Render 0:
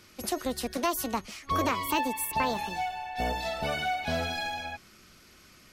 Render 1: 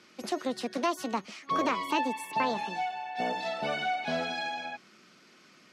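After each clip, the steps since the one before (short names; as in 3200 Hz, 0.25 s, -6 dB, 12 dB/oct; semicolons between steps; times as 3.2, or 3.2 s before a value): HPF 170 Hz 24 dB/oct; air absorption 79 m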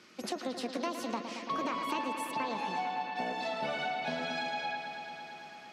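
compressor 4:1, threshold -33 dBFS, peak gain reduction 8.5 dB; on a send: analogue delay 0.112 s, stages 4096, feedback 85%, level -9.5 dB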